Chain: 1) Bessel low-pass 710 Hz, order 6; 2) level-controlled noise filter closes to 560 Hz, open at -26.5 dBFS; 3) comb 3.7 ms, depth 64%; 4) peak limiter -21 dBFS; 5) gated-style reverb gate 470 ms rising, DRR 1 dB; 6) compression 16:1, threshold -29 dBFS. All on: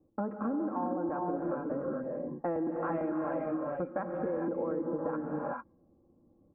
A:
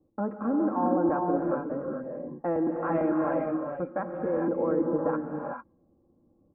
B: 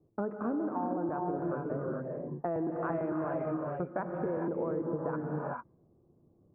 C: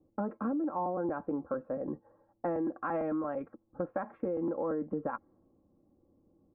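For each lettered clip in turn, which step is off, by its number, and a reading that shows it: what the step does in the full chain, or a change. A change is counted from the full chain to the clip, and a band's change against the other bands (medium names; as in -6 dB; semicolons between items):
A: 6, mean gain reduction 4.0 dB; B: 3, 125 Hz band +5.0 dB; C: 5, momentary loudness spread change +4 LU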